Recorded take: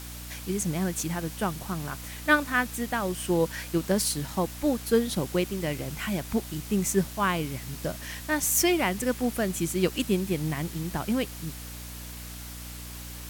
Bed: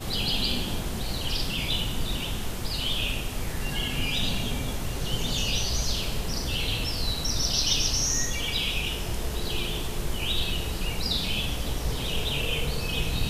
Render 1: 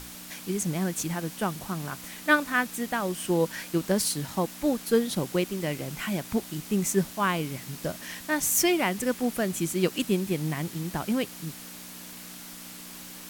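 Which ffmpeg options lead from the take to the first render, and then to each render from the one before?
ffmpeg -i in.wav -af "bandreject=frequency=60:width_type=h:width=6,bandreject=frequency=120:width_type=h:width=6" out.wav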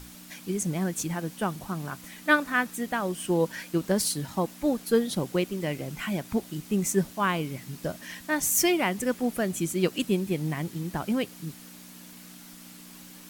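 ffmpeg -i in.wav -af "afftdn=noise_reduction=6:noise_floor=-43" out.wav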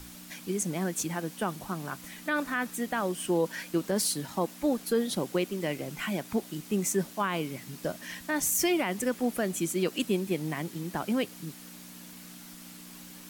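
ffmpeg -i in.wav -filter_complex "[0:a]acrossover=split=180[link_01][link_02];[link_01]acompressor=threshold=-47dB:ratio=6[link_03];[link_02]alimiter=limit=-18dB:level=0:latency=1:release=22[link_04];[link_03][link_04]amix=inputs=2:normalize=0" out.wav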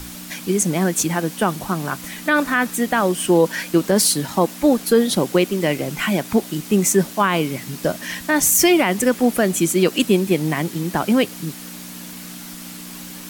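ffmpeg -i in.wav -af "volume=12dB" out.wav

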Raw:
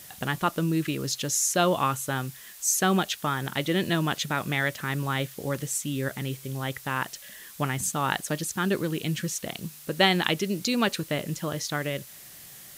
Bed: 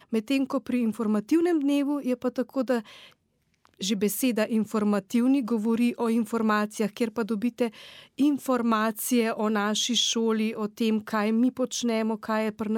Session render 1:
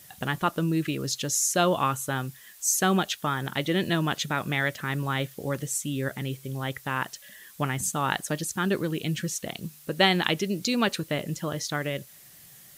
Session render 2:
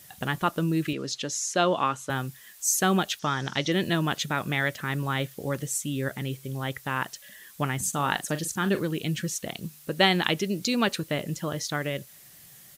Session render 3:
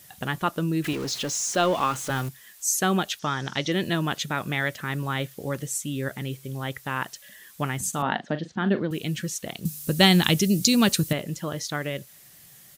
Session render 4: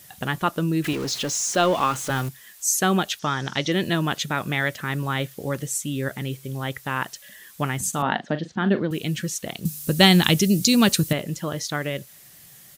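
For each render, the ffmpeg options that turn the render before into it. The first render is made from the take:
ffmpeg -i in.wav -af "afftdn=noise_reduction=6:noise_floor=-47" out.wav
ffmpeg -i in.wav -filter_complex "[0:a]asettb=1/sr,asplit=3[link_01][link_02][link_03];[link_01]atrim=end=0.934[link_04];[link_02]atrim=start=0.93:end=2.1,asetpts=PTS-STARTPTS,afade=type=in:duration=0.004:curve=qsin,afade=type=out:start_time=1.166:duration=0.004:curve=qsin,highpass=190,lowpass=5800[link_05];[link_03]atrim=start=2.096[link_06];[link_04][link_05]acrossfade=duration=0.004:curve1=hsin:curve2=qsin[link_07];[link_07][link_06]acrossfade=duration=0.004:curve1=qsin:curve2=hsin,asettb=1/sr,asplit=3[link_08][link_09][link_10];[link_08]atrim=end=3.194[link_11];[link_09]atrim=start=3.19:end=3.72,asetpts=PTS-STARTPTS,afade=type=in:duration=0.004:curve=qsin,afade=type=out:start_time=0.526:duration=0.004:curve=qsin,lowpass=frequency=5700:width_type=q:width=4.7[link_12];[link_10]atrim=start=3.716[link_13];[link_11][link_12]acrossfade=duration=0.004:curve1=hsin:curve2=qsin[link_14];[link_14][link_13]acrossfade=duration=0.004:curve1=qsin:curve2=hsin,asplit=3[link_15][link_16][link_17];[link_15]afade=type=out:start_time=7.92:duration=0.02[link_18];[link_16]asplit=2[link_19][link_20];[link_20]adelay=41,volume=-12dB[link_21];[link_19][link_21]amix=inputs=2:normalize=0,afade=type=in:start_time=7.92:duration=0.02,afade=type=out:start_time=8.83:duration=0.02[link_22];[link_17]afade=type=in:start_time=8.83:duration=0.02[link_23];[link_18][link_22][link_23]amix=inputs=3:normalize=0" out.wav
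ffmpeg -i in.wav -filter_complex "[0:a]asettb=1/sr,asplit=3[link_01][link_02][link_03];[link_01]atrim=end=0.844[link_04];[link_02]atrim=start=0.84:end=2.29,asetpts=PTS-STARTPTS,afade=type=in:duration=0.004:curve=qsin,afade=type=out:start_time=1.446:duration=0.004:curve=qsin,aeval=exprs='val(0)+0.5*0.0251*sgn(val(0))':channel_layout=same[link_05];[link_03]atrim=start=2.286[link_06];[link_04][link_05]acrossfade=duration=0.004:curve1=hsin:curve2=qsin[link_07];[link_07][link_06]acrossfade=duration=0.004:curve1=qsin:curve2=hsin,asettb=1/sr,asplit=3[link_08][link_09][link_10];[link_08]atrim=end=8.024[link_11];[link_09]atrim=start=8.02:end=8.91,asetpts=PTS-STARTPTS,afade=type=in:duration=0.004:curve=qsin,afade=type=out:start_time=0.886:duration=0.004:curve=qsin,highpass=100,equalizer=frequency=230:width_type=q:width=4:gain=9,equalizer=frequency=690:width_type=q:width=4:gain=6,equalizer=frequency=1200:width_type=q:width=4:gain=-3,equalizer=frequency=2500:width_type=q:width=4:gain=-6,lowpass=frequency=3600:width=0.5412,lowpass=frequency=3600:width=1.3066[link_12];[link_10]atrim=start=8.906[link_13];[link_11][link_12]acrossfade=duration=0.004:curve1=hsin:curve2=qsin[link_14];[link_14][link_13]acrossfade=duration=0.004:curve1=qsin:curve2=hsin,asettb=1/sr,asplit=3[link_15][link_16][link_17];[link_15]atrim=end=9.654[link_18];[link_16]atrim=start=9.65:end=11.13,asetpts=PTS-STARTPTS,afade=type=in:duration=0.004:curve=qsin,afade=type=out:start_time=1.476:duration=0.004:curve=qsin,bass=frequency=250:gain=12,treble=frequency=4000:gain=13[link_19];[link_17]atrim=start=11.126[link_20];[link_18][link_19]acrossfade=duration=0.004:curve1=hsin:curve2=qsin[link_21];[link_21][link_20]acrossfade=duration=0.004:curve1=qsin:curve2=hsin" out.wav
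ffmpeg -i in.wav -af "volume=2.5dB,alimiter=limit=-1dB:level=0:latency=1" out.wav

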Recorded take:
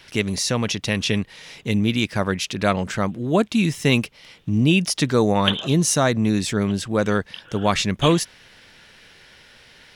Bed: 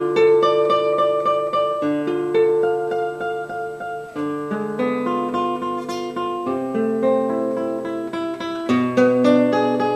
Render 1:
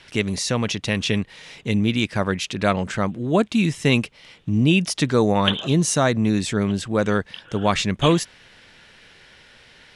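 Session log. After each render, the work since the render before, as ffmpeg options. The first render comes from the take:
ffmpeg -i in.wav -af "lowpass=frequency=9900:width=0.5412,lowpass=frequency=9900:width=1.3066,equalizer=frequency=5400:width_type=o:width=0.71:gain=-3" out.wav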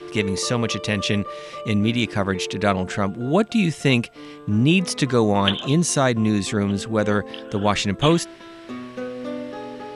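ffmpeg -i in.wav -i bed.wav -filter_complex "[1:a]volume=-15.5dB[link_01];[0:a][link_01]amix=inputs=2:normalize=0" out.wav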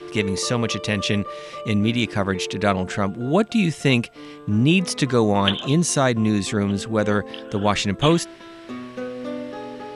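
ffmpeg -i in.wav -af anull out.wav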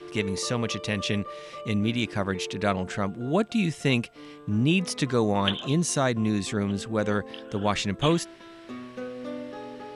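ffmpeg -i in.wav -af "volume=-5.5dB" out.wav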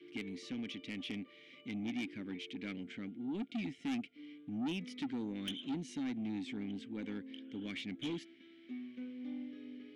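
ffmpeg -i in.wav -filter_complex "[0:a]asplit=3[link_01][link_02][link_03];[link_01]bandpass=frequency=270:width_type=q:width=8,volume=0dB[link_04];[link_02]bandpass=frequency=2290:width_type=q:width=8,volume=-6dB[link_05];[link_03]bandpass=frequency=3010:width_type=q:width=8,volume=-9dB[link_06];[link_04][link_05][link_06]amix=inputs=3:normalize=0,asoftclip=type=tanh:threshold=-33.5dB" out.wav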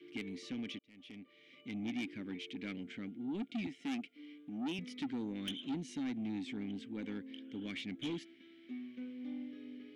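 ffmpeg -i in.wav -filter_complex "[0:a]asettb=1/sr,asplit=3[link_01][link_02][link_03];[link_01]atrim=end=3.674[link_04];[link_02]atrim=start=3.67:end=4.79,asetpts=PTS-STARTPTS,afade=type=in:duration=0.004:curve=qsin,afade=type=out:start_time=1.116:duration=0.004:curve=qsin,highpass=210[link_05];[link_03]atrim=start=4.786[link_06];[link_04][link_05]acrossfade=duration=0.004:curve1=hsin:curve2=qsin[link_07];[link_07][link_06]acrossfade=duration=0.004:curve1=qsin:curve2=hsin,asplit=2[link_08][link_09];[link_08]atrim=end=0.79,asetpts=PTS-STARTPTS,afade=type=out:start_time=0.786:duration=0.004:curve=hsin[link_10];[link_09]atrim=start=0.79,asetpts=PTS-STARTPTS,afade=type=in:duration=1.06[link_11];[link_10][link_11]concat=n=2:v=0:a=1" out.wav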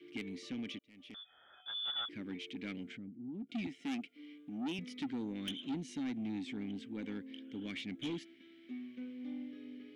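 ffmpeg -i in.wav -filter_complex "[0:a]asettb=1/sr,asplit=3[link_01][link_02][link_03];[link_01]atrim=end=1.144[link_04];[link_02]atrim=start=1.14:end=2.09,asetpts=PTS-STARTPTS,afade=type=in:duration=0.004:curve=qsin,afade=type=out:start_time=0.946:duration=0.004:curve=qsin,lowpass=frequency=3100:width_type=q:width=0.5098,lowpass=frequency=3100:width_type=q:width=0.6013,lowpass=frequency=3100:width_type=q:width=0.9,lowpass=frequency=3100:width_type=q:width=2.563,afreqshift=-3700[link_05];[link_03]atrim=start=2.086[link_06];[link_04][link_05]acrossfade=duration=0.004:curve1=hsin:curve2=qsin[link_07];[link_07][link_06]acrossfade=duration=0.004:curve1=qsin:curve2=hsin,asplit=3[link_08][link_09][link_10];[link_08]afade=type=out:start_time=2.96:duration=0.02[link_11];[link_09]bandpass=frequency=120:width_type=q:width=0.81,afade=type=in:start_time=2.96:duration=0.02,afade=type=out:start_time=3.48:duration=0.02[link_12];[link_10]afade=type=in:start_time=3.48:duration=0.02[link_13];[link_11][link_12][link_13]amix=inputs=3:normalize=0" out.wav

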